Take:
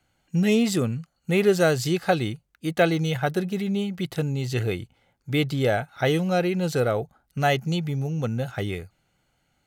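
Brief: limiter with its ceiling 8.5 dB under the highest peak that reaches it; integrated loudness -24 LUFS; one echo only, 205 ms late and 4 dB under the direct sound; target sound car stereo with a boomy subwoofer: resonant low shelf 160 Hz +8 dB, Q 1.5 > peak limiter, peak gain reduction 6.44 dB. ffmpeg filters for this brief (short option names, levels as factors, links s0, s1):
-af "alimiter=limit=0.168:level=0:latency=1,lowshelf=f=160:t=q:w=1.5:g=8,aecho=1:1:205:0.631,volume=1.06,alimiter=limit=0.168:level=0:latency=1"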